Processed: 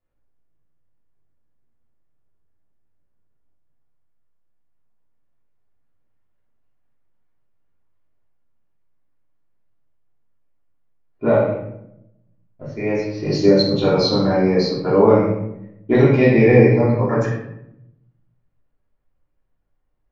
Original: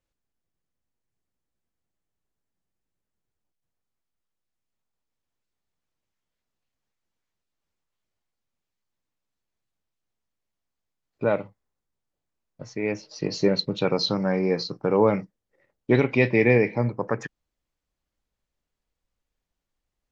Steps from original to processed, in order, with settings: shoebox room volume 230 m³, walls mixed, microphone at 3.1 m; dynamic EQ 2500 Hz, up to -6 dB, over -29 dBFS, Q 1.3; low-pass opened by the level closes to 1800 Hz, open at -8 dBFS; gain -3 dB

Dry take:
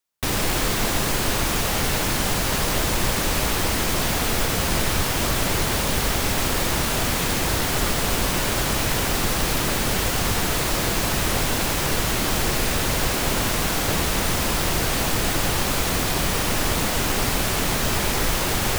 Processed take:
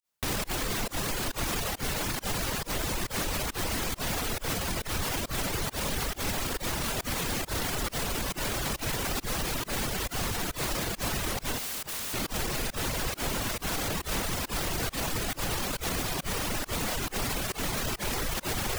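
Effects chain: limiter -19.5 dBFS, peak gain reduction 10.5 dB; pump 137 bpm, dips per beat 1, -22 dB, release 0.104 s; reverb removal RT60 0.76 s; 11.58–12.14 wrapped overs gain 30 dB

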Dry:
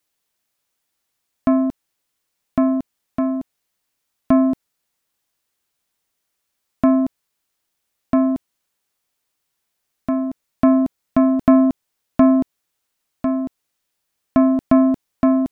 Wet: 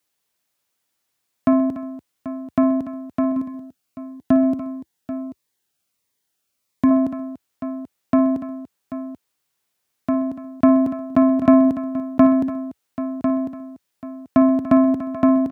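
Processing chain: HPF 71 Hz 24 dB/oct; tapped delay 56/128/290/786 ms -15/-18.5/-14/-13.5 dB; 3.32–6.91 cascading phaser falling 1.5 Hz

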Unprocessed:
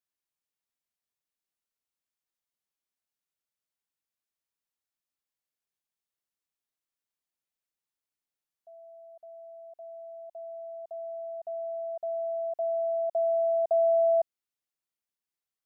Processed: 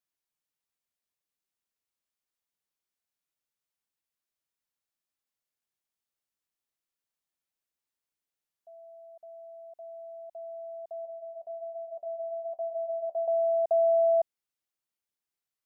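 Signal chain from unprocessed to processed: 11.05–13.28 flange 1.2 Hz, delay 9.6 ms, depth 4.6 ms, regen -51%

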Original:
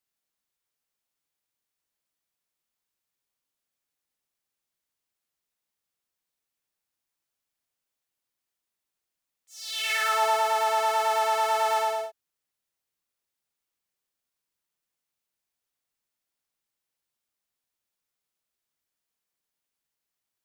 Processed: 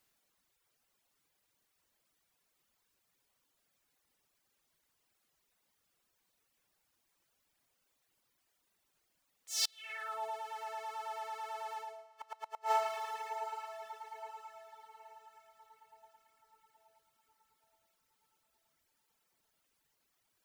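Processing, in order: high shelf 2500 Hz -4.5 dB; on a send: diffused feedback echo 0.737 s, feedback 43%, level -15.5 dB; on the sum: flipped gate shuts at -30 dBFS, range -27 dB; reverb removal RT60 1.5 s; gain +13 dB

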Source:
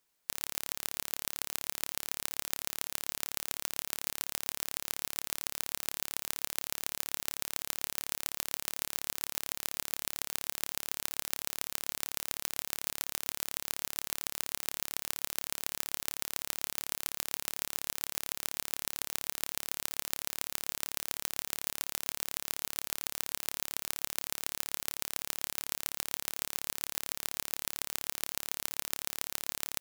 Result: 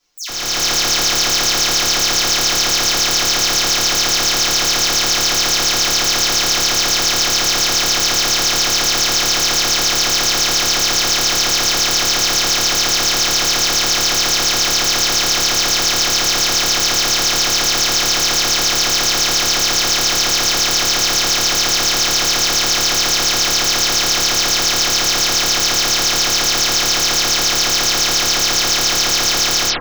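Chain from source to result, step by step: spectral delay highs early, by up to 0.122 s; resonant high shelf 7500 Hz -9.5 dB, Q 3; AGC gain up to 12 dB; reverb, pre-delay 3 ms, DRR -7 dB; gain +4.5 dB

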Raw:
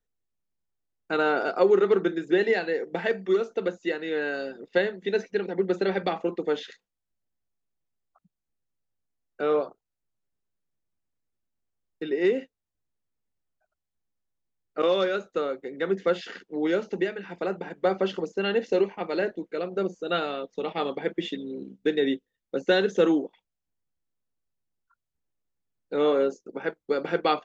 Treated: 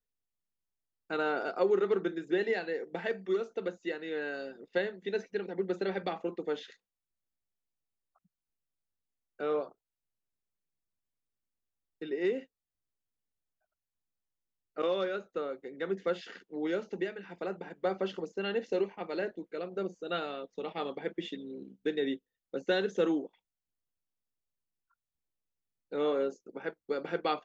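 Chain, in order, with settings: 14.86–15.51 high shelf 6200 Hz -> 4000 Hz -8 dB; gain -7.5 dB

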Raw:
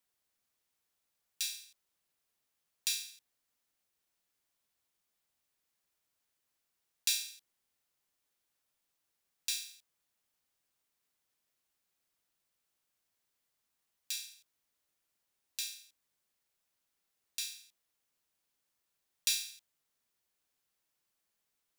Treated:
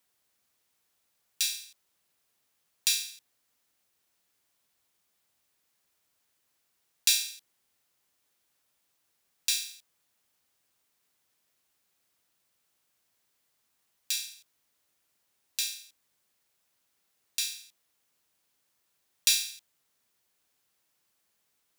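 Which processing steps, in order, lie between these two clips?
HPF 51 Hz; gain +7.5 dB

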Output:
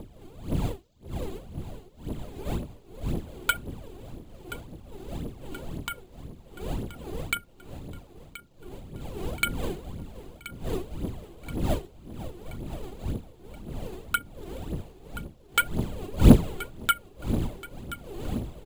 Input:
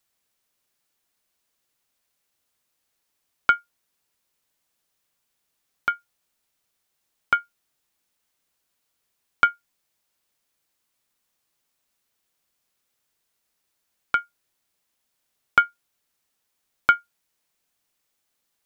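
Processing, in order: wind noise 320 Hz -28 dBFS; resonant high shelf 2400 Hz +11 dB, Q 1.5; phaser 1.9 Hz, delay 2.9 ms, feedback 67%; on a send: feedback echo 1.027 s, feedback 53%, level -15 dB; on the sum: careless resampling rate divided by 4×, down filtered, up hold; gain -8.5 dB

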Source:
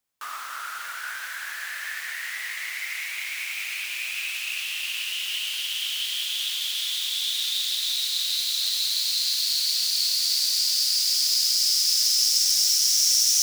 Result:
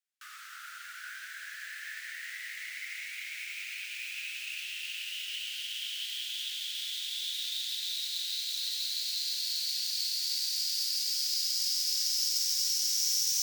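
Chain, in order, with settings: steep high-pass 1400 Hz 48 dB/oct; careless resampling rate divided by 2×, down filtered, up hold; gain -8.5 dB

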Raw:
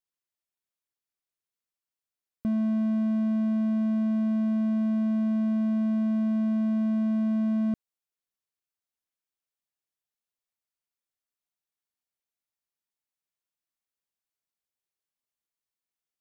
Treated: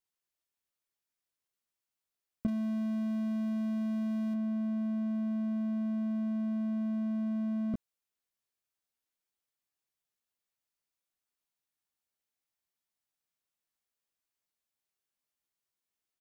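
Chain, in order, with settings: 2.48–4.34 high shelf 2500 Hz +10 dB; doubler 16 ms -5 dB

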